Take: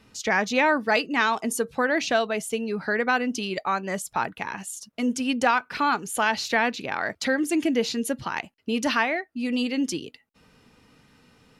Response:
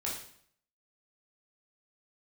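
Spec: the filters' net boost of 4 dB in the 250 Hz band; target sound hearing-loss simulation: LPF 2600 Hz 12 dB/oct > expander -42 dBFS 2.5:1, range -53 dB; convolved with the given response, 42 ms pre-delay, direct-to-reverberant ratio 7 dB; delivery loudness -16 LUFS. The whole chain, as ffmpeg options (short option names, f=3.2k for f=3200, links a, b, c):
-filter_complex "[0:a]equalizer=f=250:t=o:g=4.5,asplit=2[a][b];[1:a]atrim=start_sample=2205,adelay=42[c];[b][c]afir=irnorm=-1:irlink=0,volume=-10dB[d];[a][d]amix=inputs=2:normalize=0,lowpass=2.6k,agate=range=-53dB:threshold=-42dB:ratio=2.5,volume=7.5dB"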